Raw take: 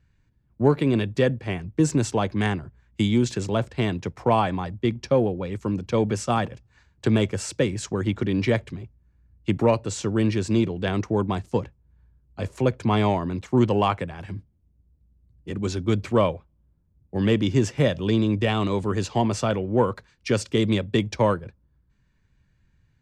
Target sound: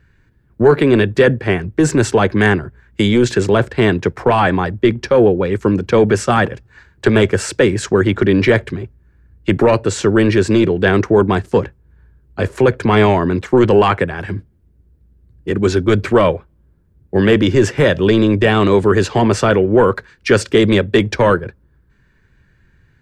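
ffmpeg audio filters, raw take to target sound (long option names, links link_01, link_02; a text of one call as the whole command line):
ffmpeg -i in.wav -af "apsyclip=18.5dB,equalizer=frequency=400:width_type=o:width=0.67:gain=8,equalizer=frequency=1600:width_type=o:width=0.67:gain=9,equalizer=frequency=6300:width_type=o:width=0.67:gain=-3,volume=-9dB" out.wav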